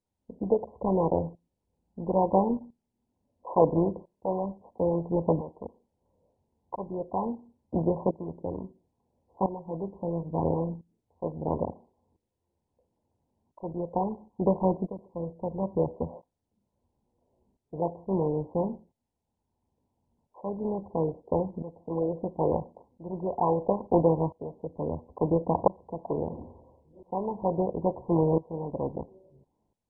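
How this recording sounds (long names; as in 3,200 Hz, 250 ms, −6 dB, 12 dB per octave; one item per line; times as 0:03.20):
tremolo saw up 0.74 Hz, depth 85%
MP2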